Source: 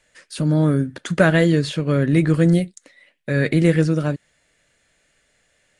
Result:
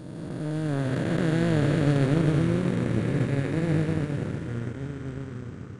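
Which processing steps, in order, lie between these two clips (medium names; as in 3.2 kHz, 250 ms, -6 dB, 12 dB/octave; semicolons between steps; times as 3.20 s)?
spectral blur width 1120 ms; ever faster or slower copies 555 ms, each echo -3 st, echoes 3, each echo -6 dB; power-law waveshaper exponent 1.4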